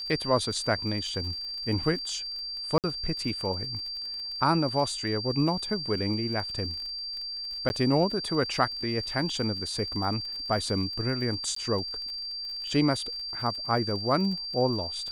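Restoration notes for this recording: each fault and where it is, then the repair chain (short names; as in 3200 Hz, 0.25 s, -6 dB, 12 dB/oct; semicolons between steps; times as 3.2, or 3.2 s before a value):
crackle 37/s -36 dBFS
tone 4700 Hz -33 dBFS
2.78–2.84 gap 58 ms
7.69–7.7 gap 11 ms
11.55–11.56 gap 14 ms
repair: de-click; notch 4700 Hz, Q 30; interpolate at 2.78, 58 ms; interpolate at 7.69, 11 ms; interpolate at 11.55, 14 ms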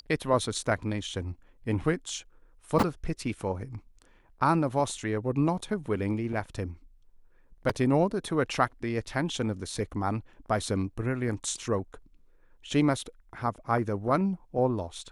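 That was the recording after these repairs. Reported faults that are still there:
none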